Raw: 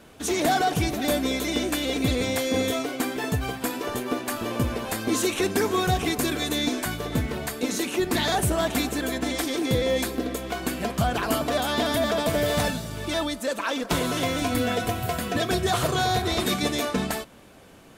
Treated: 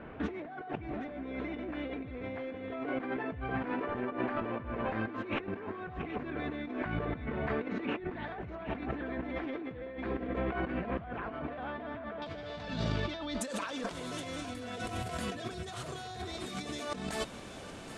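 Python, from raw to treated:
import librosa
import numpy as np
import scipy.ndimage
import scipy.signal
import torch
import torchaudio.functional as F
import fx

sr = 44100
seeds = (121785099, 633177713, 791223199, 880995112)

y = fx.lowpass(x, sr, hz=fx.steps((0.0, 2200.0), (12.22, 4600.0), (13.41, 9500.0)), slope=24)
y = fx.over_compress(y, sr, threshold_db=-35.0, ratio=-1.0)
y = fx.echo_thinned(y, sr, ms=772, feedback_pct=41, hz=1000.0, wet_db=-12.0)
y = y * 10.0 ** (-3.5 / 20.0)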